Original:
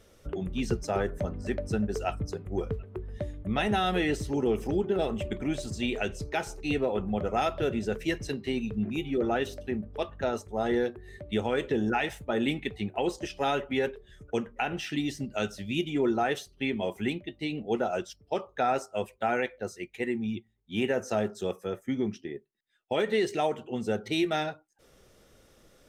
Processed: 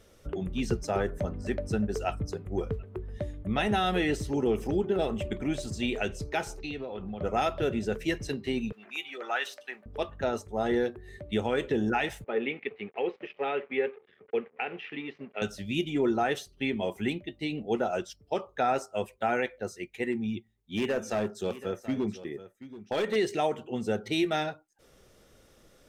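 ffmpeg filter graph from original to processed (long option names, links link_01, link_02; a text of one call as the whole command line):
ffmpeg -i in.wav -filter_complex "[0:a]asettb=1/sr,asplit=3[link_01][link_02][link_03];[link_01]atrim=end=6.594[link_04];[link_02]atrim=start=6.59:end=7.21,asetpts=PTS-STARTPTS,afade=type=in:duration=0.004:curve=qsin,afade=type=out:start_time=0.616:duration=0.004:curve=qsin,acompressor=threshold=-34dB:ratio=5:attack=3.2:release=140:knee=1:detection=peak,lowpass=frequency=4400:width_type=q:width=1.8[link_05];[link_03]atrim=start=7.206[link_06];[link_04][link_05]acrossfade=duration=0.004:curve1=hsin:curve2=qsin[link_07];[link_07][link_06]acrossfade=duration=0.004:curve1=qsin:curve2=hsin,asettb=1/sr,asplit=3[link_08][link_09][link_10];[link_08]atrim=end=8.724[link_11];[link_09]atrim=start=8.72:end=9.86,asetpts=PTS-STARTPTS,afade=type=in:duration=0.004:curve=qsin,afade=type=out:start_time=1.136:duration=0.004:curve=qsin,highpass=990,equalizer=frequency=1600:width=0.44:gain=5.5[link_12];[link_10]atrim=start=9.856[link_13];[link_11][link_12]acrossfade=duration=0.004:curve1=hsin:curve2=qsin[link_14];[link_14][link_13]acrossfade=duration=0.004:curve1=qsin:curve2=hsin,asettb=1/sr,asplit=3[link_15][link_16][link_17];[link_15]atrim=end=12.244[link_18];[link_16]atrim=start=12.24:end=15.42,asetpts=PTS-STARTPTS,afade=type=in:duration=0.004:curve=qsin,afade=type=out:start_time=3.176:duration=0.004:curve=qsin,acompressor=mode=upward:threshold=-39dB:ratio=2.5:attack=3.2:release=140:knee=2.83:detection=peak,aeval=exprs='sgn(val(0))*max(abs(val(0))-0.00422,0)':channel_layout=same,highpass=300,equalizer=frequency=310:width_type=q:width=4:gain=-7,equalizer=frequency=440:width_type=q:width=4:gain=7,equalizer=frequency=630:width_type=q:width=4:gain=-7,equalizer=frequency=960:width_type=q:width=4:gain=-6,equalizer=frequency=1500:width_type=q:width=4:gain=-5,equalizer=frequency=2300:width_type=q:width=4:gain=4,lowpass=frequency=2700:width=0.5412,lowpass=frequency=2700:width=1.3066[link_19];[link_17]atrim=start=15.416[link_20];[link_18][link_19]acrossfade=duration=0.004:curve1=hsin:curve2=qsin[link_21];[link_21][link_20]acrossfade=duration=0.004:curve1=qsin:curve2=hsin,asettb=1/sr,asplit=3[link_22][link_23][link_24];[link_22]atrim=end=20.124[link_25];[link_23]atrim=start=20.12:end=23.16,asetpts=PTS-STARTPTS,afade=type=in:duration=0.004:curve=qsin,afade=type=out:start_time=3.036:duration=0.004:curve=qsin,asoftclip=type=hard:threshold=-23.5dB,aecho=1:1:730:0.178,atrim=end_sample=134064[link_26];[link_24]atrim=start=23.156[link_27];[link_25][link_26]acrossfade=duration=0.004:curve1=hsin:curve2=qsin[link_28];[link_28][link_27]acrossfade=duration=0.004:curve1=qsin:curve2=hsin" out.wav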